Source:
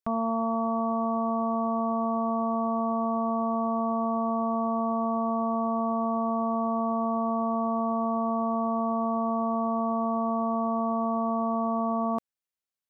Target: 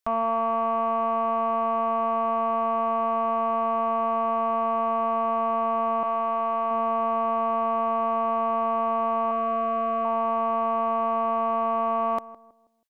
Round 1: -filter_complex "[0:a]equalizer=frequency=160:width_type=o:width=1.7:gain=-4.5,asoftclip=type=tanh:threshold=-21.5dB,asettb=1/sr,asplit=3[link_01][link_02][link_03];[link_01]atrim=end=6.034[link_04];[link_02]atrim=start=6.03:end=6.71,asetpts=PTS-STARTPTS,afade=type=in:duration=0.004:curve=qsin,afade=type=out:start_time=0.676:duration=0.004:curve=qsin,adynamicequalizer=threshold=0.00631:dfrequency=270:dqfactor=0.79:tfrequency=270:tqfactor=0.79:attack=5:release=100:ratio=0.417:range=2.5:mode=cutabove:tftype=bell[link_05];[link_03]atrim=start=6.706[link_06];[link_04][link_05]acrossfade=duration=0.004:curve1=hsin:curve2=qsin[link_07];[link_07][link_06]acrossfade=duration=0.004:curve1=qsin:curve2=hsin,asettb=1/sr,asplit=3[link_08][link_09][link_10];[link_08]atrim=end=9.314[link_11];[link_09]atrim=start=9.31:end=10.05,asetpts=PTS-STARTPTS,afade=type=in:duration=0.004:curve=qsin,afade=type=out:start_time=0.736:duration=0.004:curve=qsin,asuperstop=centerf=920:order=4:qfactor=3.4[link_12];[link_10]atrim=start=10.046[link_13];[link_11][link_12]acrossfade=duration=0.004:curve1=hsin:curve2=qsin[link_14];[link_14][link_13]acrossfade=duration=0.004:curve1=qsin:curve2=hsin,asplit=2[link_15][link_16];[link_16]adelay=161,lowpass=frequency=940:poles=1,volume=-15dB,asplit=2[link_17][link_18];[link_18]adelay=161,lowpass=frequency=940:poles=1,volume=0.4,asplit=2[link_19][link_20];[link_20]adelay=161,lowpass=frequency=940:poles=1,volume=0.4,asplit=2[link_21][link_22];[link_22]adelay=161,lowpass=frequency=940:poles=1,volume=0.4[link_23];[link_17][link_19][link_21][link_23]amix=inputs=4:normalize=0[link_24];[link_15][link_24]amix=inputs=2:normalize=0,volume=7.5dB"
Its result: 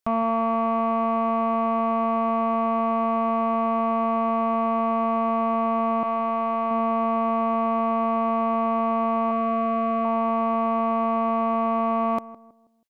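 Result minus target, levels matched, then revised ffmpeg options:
125 Hz band +7.5 dB
-filter_complex "[0:a]equalizer=frequency=160:width_type=o:width=1.7:gain=-16.5,asoftclip=type=tanh:threshold=-21.5dB,asettb=1/sr,asplit=3[link_01][link_02][link_03];[link_01]atrim=end=6.034[link_04];[link_02]atrim=start=6.03:end=6.71,asetpts=PTS-STARTPTS,afade=type=in:duration=0.004:curve=qsin,afade=type=out:start_time=0.676:duration=0.004:curve=qsin,adynamicequalizer=threshold=0.00631:dfrequency=270:dqfactor=0.79:tfrequency=270:tqfactor=0.79:attack=5:release=100:ratio=0.417:range=2.5:mode=cutabove:tftype=bell[link_05];[link_03]atrim=start=6.706[link_06];[link_04][link_05]acrossfade=duration=0.004:curve1=hsin:curve2=qsin[link_07];[link_07][link_06]acrossfade=duration=0.004:curve1=qsin:curve2=hsin,asettb=1/sr,asplit=3[link_08][link_09][link_10];[link_08]atrim=end=9.314[link_11];[link_09]atrim=start=9.31:end=10.05,asetpts=PTS-STARTPTS,afade=type=in:duration=0.004:curve=qsin,afade=type=out:start_time=0.736:duration=0.004:curve=qsin,asuperstop=centerf=920:order=4:qfactor=3.4[link_12];[link_10]atrim=start=10.046[link_13];[link_11][link_12]acrossfade=duration=0.004:curve1=hsin:curve2=qsin[link_14];[link_14][link_13]acrossfade=duration=0.004:curve1=qsin:curve2=hsin,asplit=2[link_15][link_16];[link_16]adelay=161,lowpass=frequency=940:poles=1,volume=-15dB,asplit=2[link_17][link_18];[link_18]adelay=161,lowpass=frequency=940:poles=1,volume=0.4,asplit=2[link_19][link_20];[link_20]adelay=161,lowpass=frequency=940:poles=1,volume=0.4,asplit=2[link_21][link_22];[link_22]adelay=161,lowpass=frequency=940:poles=1,volume=0.4[link_23];[link_17][link_19][link_21][link_23]amix=inputs=4:normalize=0[link_24];[link_15][link_24]amix=inputs=2:normalize=0,volume=7.5dB"

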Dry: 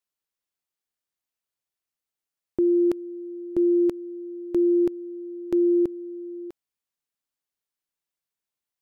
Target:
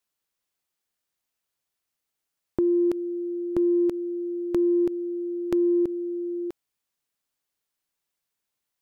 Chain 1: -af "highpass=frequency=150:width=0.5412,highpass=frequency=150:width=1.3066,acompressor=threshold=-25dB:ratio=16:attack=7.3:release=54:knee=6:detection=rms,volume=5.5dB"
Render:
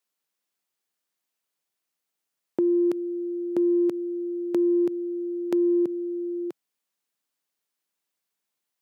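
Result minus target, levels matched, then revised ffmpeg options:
125 Hz band −7.0 dB
-af "acompressor=threshold=-25dB:ratio=16:attack=7.3:release=54:knee=6:detection=rms,volume=5.5dB"

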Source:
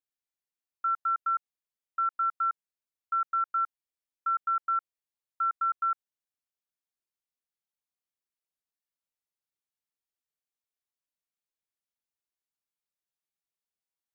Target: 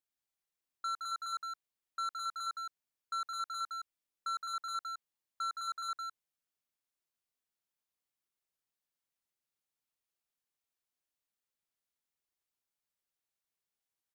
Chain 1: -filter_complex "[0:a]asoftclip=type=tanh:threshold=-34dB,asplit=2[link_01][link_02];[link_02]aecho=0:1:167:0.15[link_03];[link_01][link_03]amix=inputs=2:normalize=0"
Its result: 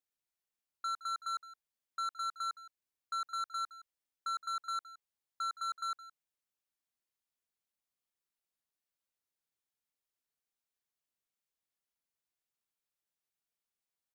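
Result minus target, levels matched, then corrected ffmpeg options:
echo-to-direct −11.5 dB
-filter_complex "[0:a]asoftclip=type=tanh:threshold=-34dB,asplit=2[link_01][link_02];[link_02]aecho=0:1:167:0.562[link_03];[link_01][link_03]amix=inputs=2:normalize=0"

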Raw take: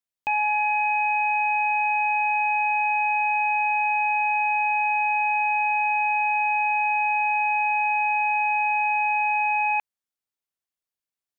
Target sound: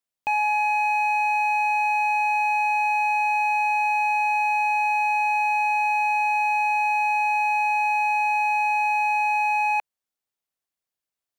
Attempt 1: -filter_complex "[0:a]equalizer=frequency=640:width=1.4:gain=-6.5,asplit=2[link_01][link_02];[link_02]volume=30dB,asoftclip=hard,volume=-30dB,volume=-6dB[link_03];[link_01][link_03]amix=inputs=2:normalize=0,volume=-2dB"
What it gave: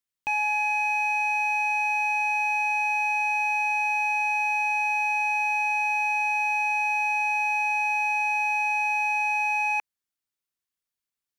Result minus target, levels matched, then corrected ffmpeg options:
500 Hz band −5.0 dB
-filter_complex "[0:a]equalizer=frequency=640:width=1.4:gain=3,asplit=2[link_01][link_02];[link_02]volume=30dB,asoftclip=hard,volume=-30dB,volume=-6dB[link_03];[link_01][link_03]amix=inputs=2:normalize=0,volume=-2dB"

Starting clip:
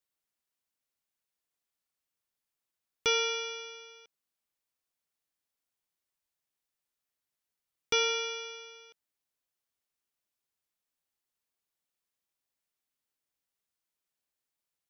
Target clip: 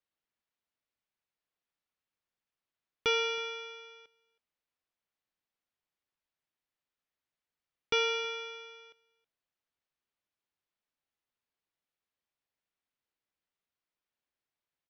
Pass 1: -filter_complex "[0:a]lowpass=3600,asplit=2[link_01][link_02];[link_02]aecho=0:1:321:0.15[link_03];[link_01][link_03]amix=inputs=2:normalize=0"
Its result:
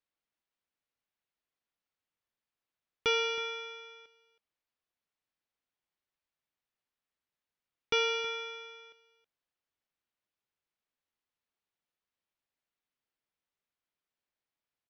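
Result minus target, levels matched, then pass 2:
echo-to-direct +7 dB
-filter_complex "[0:a]lowpass=3600,asplit=2[link_01][link_02];[link_02]aecho=0:1:321:0.0668[link_03];[link_01][link_03]amix=inputs=2:normalize=0"

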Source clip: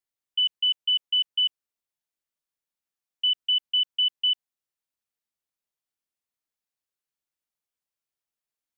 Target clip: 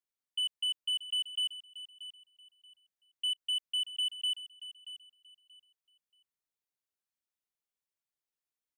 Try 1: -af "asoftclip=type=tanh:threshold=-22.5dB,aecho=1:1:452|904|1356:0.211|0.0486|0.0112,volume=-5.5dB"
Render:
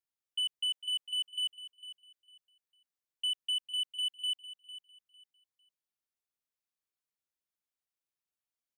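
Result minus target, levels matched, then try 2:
echo 179 ms early
-af "asoftclip=type=tanh:threshold=-22.5dB,aecho=1:1:631|1262|1893:0.211|0.0486|0.0112,volume=-5.5dB"

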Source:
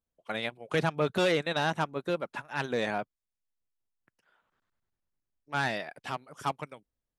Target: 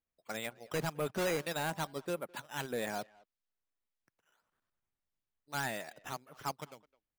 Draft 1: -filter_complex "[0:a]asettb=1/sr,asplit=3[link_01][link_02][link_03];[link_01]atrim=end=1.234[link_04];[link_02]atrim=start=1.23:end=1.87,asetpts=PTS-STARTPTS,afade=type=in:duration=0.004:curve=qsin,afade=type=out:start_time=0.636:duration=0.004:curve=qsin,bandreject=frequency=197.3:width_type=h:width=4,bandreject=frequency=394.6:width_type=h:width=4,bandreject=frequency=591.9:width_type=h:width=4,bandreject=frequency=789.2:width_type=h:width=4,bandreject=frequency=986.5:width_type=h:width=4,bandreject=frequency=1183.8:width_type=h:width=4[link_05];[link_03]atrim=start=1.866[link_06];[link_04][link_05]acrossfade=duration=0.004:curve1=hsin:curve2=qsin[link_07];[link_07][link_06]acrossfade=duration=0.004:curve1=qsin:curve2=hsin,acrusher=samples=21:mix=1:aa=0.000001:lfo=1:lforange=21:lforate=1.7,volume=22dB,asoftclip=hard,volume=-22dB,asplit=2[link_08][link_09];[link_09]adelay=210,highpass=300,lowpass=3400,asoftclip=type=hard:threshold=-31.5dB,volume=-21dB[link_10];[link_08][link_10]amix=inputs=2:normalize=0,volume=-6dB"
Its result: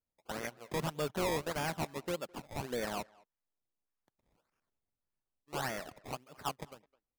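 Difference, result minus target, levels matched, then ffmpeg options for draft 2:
sample-and-hold swept by an LFO: distortion +9 dB
-filter_complex "[0:a]asettb=1/sr,asplit=3[link_01][link_02][link_03];[link_01]atrim=end=1.234[link_04];[link_02]atrim=start=1.23:end=1.87,asetpts=PTS-STARTPTS,afade=type=in:duration=0.004:curve=qsin,afade=type=out:start_time=0.636:duration=0.004:curve=qsin,bandreject=frequency=197.3:width_type=h:width=4,bandreject=frequency=394.6:width_type=h:width=4,bandreject=frequency=591.9:width_type=h:width=4,bandreject=frequency=789.2:width_type=h:width=4,bandreject=frequency=986.5:width_type=h:width=4,bandreject=frequency=1183.8:width_type=h:width=4[link_05];[link_03]atrim=start=1.866[link_06];[link_04][link_05]acrossfade=duration=0.004:curve1=hsin:curve2=qsin[link_07];[link_07][link_06]acrossfade=duration=0.004:curve1=qsin:curve2=hsin,acrusher=samples=7:mix=1:aa=0.000001:lfo=1:lforange=7:lforate=1.7,volume=22dB,asoftclip=hard,volume=-22dB,asplit=2[link_08][link_09];[link_09]adelay=210,highpass=300,lowpass=3400,asoftclip=type=hard:threshold=-31.5dB,volume=-21dB[link_10];[link_08][link_10]amix=inputs=2:normalize=0,volume=-6dB"

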